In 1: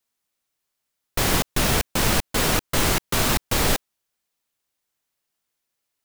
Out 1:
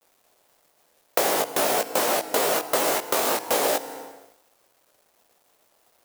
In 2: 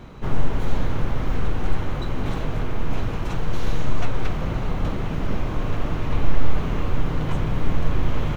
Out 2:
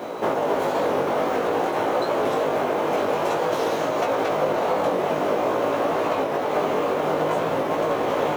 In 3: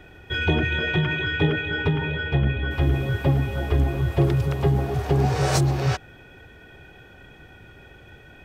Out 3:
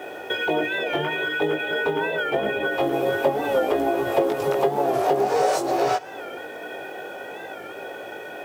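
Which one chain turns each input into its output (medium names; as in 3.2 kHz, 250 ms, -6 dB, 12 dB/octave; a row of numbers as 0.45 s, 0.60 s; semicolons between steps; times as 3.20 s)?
treble shelf 6.3 kHz +9.5 dB; FDN reverb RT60 0.97 s, low-frequency decay 1×, high-frequency decay 0.75×, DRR 17.5 dB; peak limiter -11.5 dBFS; chorus 0.51 Hz, delay 17.5 ms, depth 3.2 ms; high-pass 330 Hz 12 dB/octave; companded quantiser 6-bit; compression 6:1, threshold -38 dBFS; peaking EQ 590 Hz +14.5 dB 1.9 oct; warped record 45 rpm, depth 100 cents; normalise loudness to -23 LUFS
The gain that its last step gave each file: +12.5 dB, +9.0 dB, +9.0 dB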